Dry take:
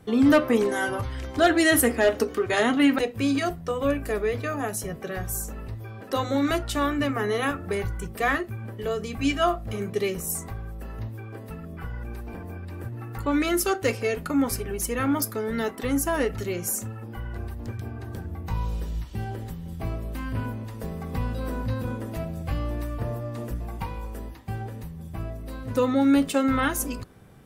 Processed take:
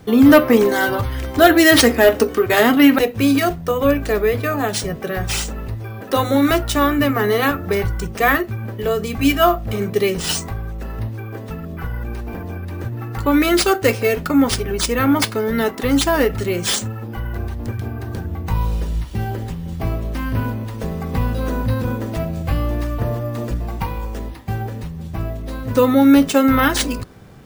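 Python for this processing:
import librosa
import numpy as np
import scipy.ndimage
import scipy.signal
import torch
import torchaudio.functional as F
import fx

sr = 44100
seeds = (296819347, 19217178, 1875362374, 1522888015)

y = np.repeat(x[::3], 3)[:len(x)]
y = F.gain(torch.from_numpy(y), 8.5).numpy()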